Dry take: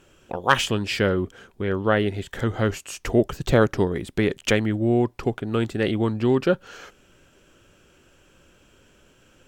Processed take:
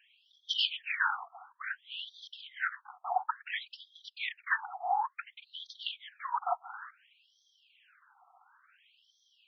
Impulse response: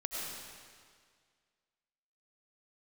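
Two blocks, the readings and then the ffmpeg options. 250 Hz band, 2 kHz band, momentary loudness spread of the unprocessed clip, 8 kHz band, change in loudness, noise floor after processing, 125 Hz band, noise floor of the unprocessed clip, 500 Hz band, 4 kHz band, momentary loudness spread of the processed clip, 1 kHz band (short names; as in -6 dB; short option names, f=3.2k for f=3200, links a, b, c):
under -40 dB, -6.5 dB, 8 LU, under -20 dB, -12.0 dB, -73 dBFS, under -40 dB, -58 dBFS, -26.0 dB, -3.5 dB, 16 LU, -5.0 dB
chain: -af "highpass=f=750:t=q:w=4.9,afftfilt=real='hypot(re,im)*cos(2*PI*random(0))':imag='hypot(re,im)*sin(2*PI*random(1))':win_size=512:overlap=0.75,afftfilt=real='re*between(b*sr/1024,950*pow(4500/950,0.5+0.5*sin(2*PI*0.57*pts/sr))/1.41,950*pow(4500/950,0.5+0.5*sin(2*PI*0.57*pts/sr))*1.41)':imag='im*between(b*sr/1024,950*pow(4500/950,0.5+0.5*sin(2*PI*0.57*pts/sr))/1.41,950*pow(4500/950,0.5+0.5*sin(2*PI*0.57*pts/sr))*1.41)':win_size=1024:overlap=0.75,volume=4dB"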